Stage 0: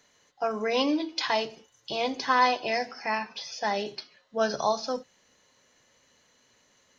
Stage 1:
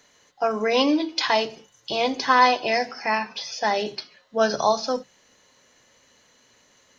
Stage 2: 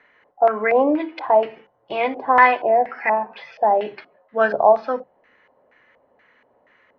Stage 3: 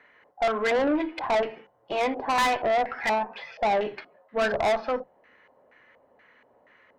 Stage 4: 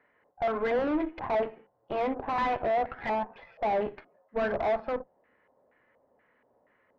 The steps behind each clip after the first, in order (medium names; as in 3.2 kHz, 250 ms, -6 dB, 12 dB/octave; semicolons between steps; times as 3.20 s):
hum notches 50/100/150/200 Hz; trim +5.5 dB
tone controls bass -7 dB, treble -14 dB; LFO low-pass square 2.1 Hz 730–2000 Hz; trim +1.5 dB
valve stage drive 20 dB, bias 0.3
Chebyshev shaper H 2 -9 dB, 4 -13 dB, 7 -25 dB, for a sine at -17.5 dBFS; tape spacing loss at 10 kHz 41 dB